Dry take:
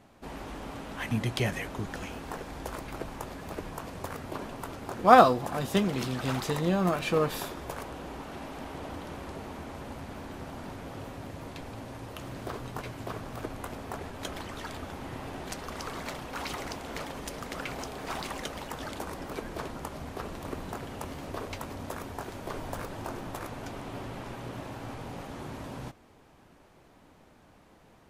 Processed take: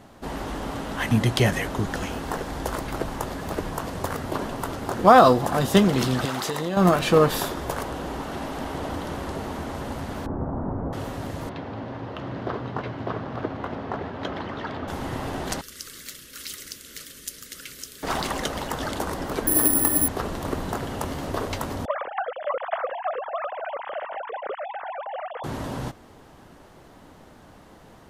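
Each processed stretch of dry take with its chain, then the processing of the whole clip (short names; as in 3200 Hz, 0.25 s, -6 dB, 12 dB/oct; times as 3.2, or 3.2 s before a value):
6.25–6.77 HPF 330 Hz 6 dB/oct + compressor, threshold -32 dBFS
10.26–10.93 LPF 1200 Hz 24 dB/oct + low shelf 380 Hz +5.5 dB
11.49–14.88 HPF 98 Hz + air absorption 270 m
15.61–18.03 Butterworth band-stop 830 Hz, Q 0.88 + pre-emphasis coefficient 0.9
19.47–20.08 small resonant body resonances 300/1800 Hz, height 16 dB, ringing for 85 ms + careless resampling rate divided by 4×, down none, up zero stuff
21.85–25.44 sine-wave speech + air absorption 190 m
whole clip: bell 2400 Hz -6 dB 0.23 oct; maximiser +11.5 dB; gain -2.5 dB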